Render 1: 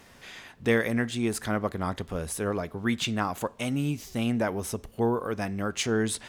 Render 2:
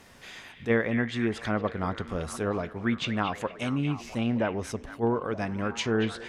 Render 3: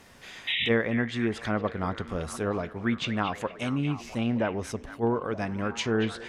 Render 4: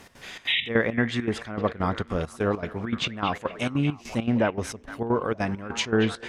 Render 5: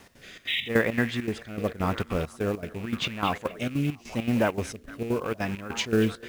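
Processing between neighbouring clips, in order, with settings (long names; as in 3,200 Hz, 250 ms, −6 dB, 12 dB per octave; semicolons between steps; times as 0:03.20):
treble cut that deepens with the level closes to 2,300 Hz, closed at −22.5 dBFS; echo through a band-pass that steps 230 ms, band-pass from 2,500 Hz, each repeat −0.7 octaves, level −6 dB; level that may rise only so fast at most 350 dB per second
sound drawn into the spectrogram noise, 0:00.47–0:00.69, 1,800–3,900 Hz −28 dBFS
gate pattern "x.xxx.xx..x" 200 BPM −12 dB; level +4.5 dB
loose part that buzzes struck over −38 dBFS, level −30 dBFS; rotating-speaker cabinet horn 0.85 Hz; log-companded quantiser 6 bits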